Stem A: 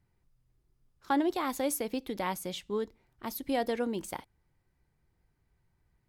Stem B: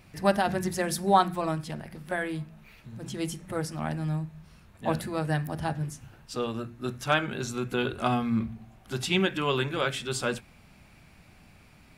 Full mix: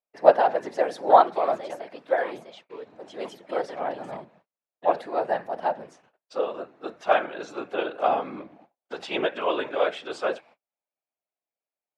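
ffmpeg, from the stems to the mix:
ffmpeg -i stem1.wav -i stem2.wav -filter_complex "[0:a]volume=1dB[link_01];[1:a]equalizer=frequency=600:width=1.1:gain=14,volume=3dB[link_02];[link_01][link_02]amix=inputs=2:normalize=0,agate=range=-41dB:threshold=-40dB:ratio=16:detection=peak,afftfilt=real='hypot(re,im)*cos(2*PI*random(0))':imag='hypot(re,im)*sin(2*PI*random(1))':win_size=512:overlap=0.75,highpass=430,lowpass=3900" out.wav

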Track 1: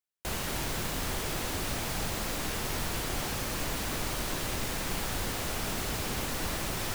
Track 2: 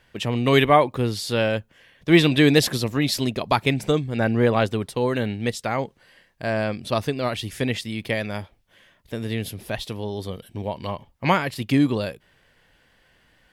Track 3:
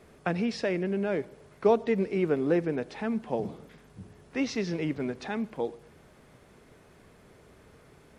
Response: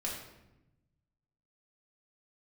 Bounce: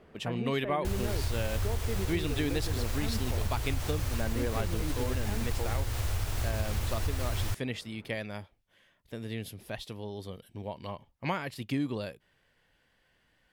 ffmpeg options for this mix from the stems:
-filter_complex "[0:a]lowshelf=frequency=130:width_type=q:width=3:gain=11,adelay=600,volume=-3dB[link_01];[1:a]volume=-10dB[link_02];[2:a]lowpass=1900,alimiter=limit=-23.5dB:level=0:latency=1:release=452,volume=-1.5dB[link_03];[link_01][link_02][link_03]amix=inputs=3:normalize=0,acompressor=threshold=-26dB:ratio=6"

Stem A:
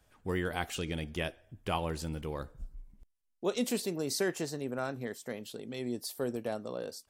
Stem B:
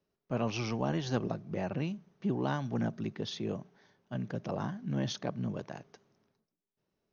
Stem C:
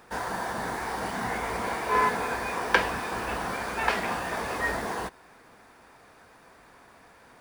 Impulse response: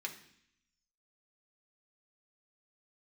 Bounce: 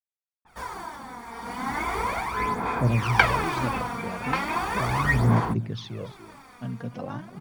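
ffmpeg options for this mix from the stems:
-filter_complex "[1:a]lowpass=5200,equalizer=frequency=120:width_type=o:width=0.36:gain=11.5,adelay=2500,volume=-9dB,asplit=2[link_01][link_02];[link_02]volume=-15dB[link_03];[2:a]aecho=1:1:0.9:0.45,tremolo=f=0.68:d=0.61,adynamicequalizer=threshold=0.00398:dfrequency=3500:dqfactor=0.7:tfrequency=3500:tqfactor=0.7:attack=5:release=100:ratio=0.375:range=2:mode=cutabove:tftype=highshelf,adelay=450,volume=-5dB[link_04];[link_03]aecho=0:1:288:1[link_05];[link_01][link_04][link_05]amix=inputs=3:normalize=0,dynaudnorm=framelen=640:gausssize=5:maxgain=8dB,aphaser=in_gain=1:out_gain=1:delay=4.3:decay=0.62:speed=0.37:type=sinusoidal"

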